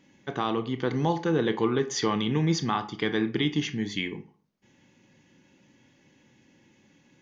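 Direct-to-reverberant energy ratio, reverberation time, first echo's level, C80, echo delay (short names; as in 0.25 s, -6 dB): 10.0 dB, 0.40 s, none, 20.0 dB, none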